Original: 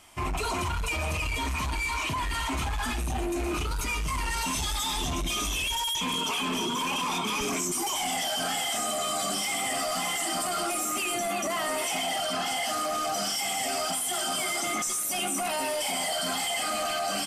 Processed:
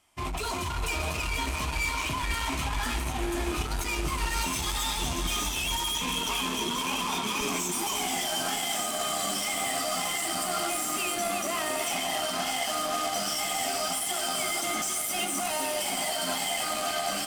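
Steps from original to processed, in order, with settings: echo that smears into a reverb 565 ms, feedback 41%, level -8.5 dB; Chebyshev shaper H 7 -19 dB, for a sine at -17 dBFS

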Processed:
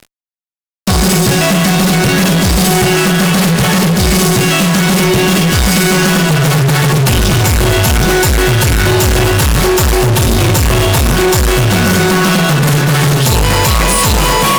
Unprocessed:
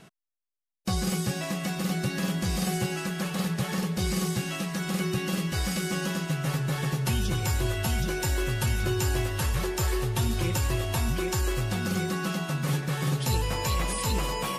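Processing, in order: flutter echo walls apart 8.8 m, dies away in 0.26 s; fuzz box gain 37 dB, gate -45 dBFS; trim +5 dB

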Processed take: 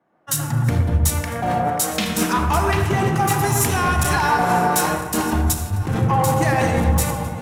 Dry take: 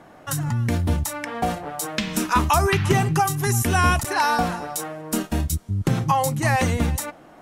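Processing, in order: backward echo that repeats 503 ms, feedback 67%, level -12 dB; Schroeder reverb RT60 1.4 s, combs from 28 ms, DRR 7 dB; in parallel at -1 dB: compressor with a negative ratio -23 dBFS, ratio -0.5; on the sum: overload inside the chain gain 12.5 dB; on a send: feedback echo behind a low-pass 118 ms, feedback 53%, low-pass 1.5 kHz, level -3.5 dB; on the sum: three bands expanded up and down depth 100%; trim -2 dB

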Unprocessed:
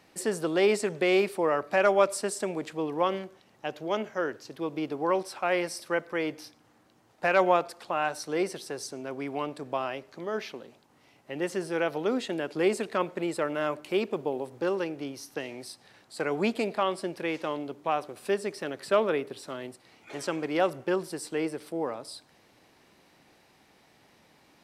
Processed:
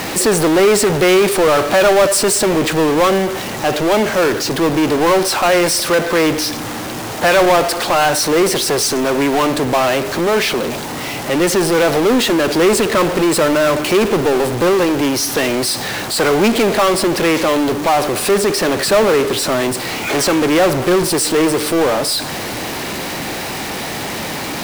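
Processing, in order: power-law waveshaper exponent 0.35; word length cut 6-bit, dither none; trim +4.5 dB

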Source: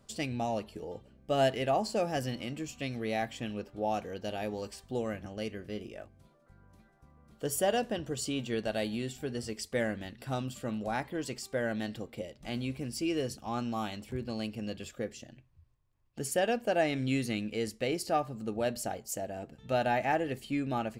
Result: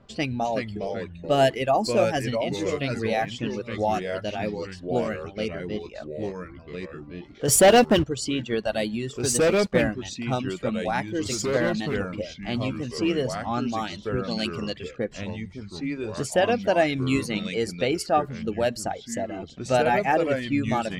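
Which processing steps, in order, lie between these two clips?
reverb removal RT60 1.2 s; level-controlled noise filter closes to 2.7 kHz, open at -27.5 dBFS; 7.48–8.04 s: waveshaping leveller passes 3; 14.31–14.78 s: treble shelf 3.1 kHz +12 dB; ever faster or slower copies 337 ms, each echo -3 st, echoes 2, each echo -6 dB; trim +8 dB

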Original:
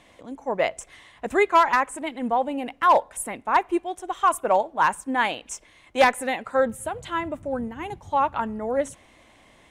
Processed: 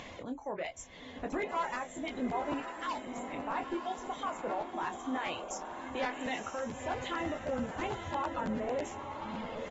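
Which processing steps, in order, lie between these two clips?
2.60–3.34 s: pre-emphasis filter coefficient 0.97; reverb removal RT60 2 s; bass shelf 78 Hz +3 dB; compression 16:1, threshold -23 dBFS, peak gain reduction 11.5 dB; peak limiter -25.5 dBFS, peak gain reduction 11 dB; upward compressor, threshold -36 dBFS; doubling 24 ms -7.5 dB; echo that smears into a reverb 964 ms, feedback 44%, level -6 dB; crackling interface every 0.11 s, samples 512, repeat, from 0.64 s; trim -3.5 dB; AAC 24 kbps 44.1 kHz

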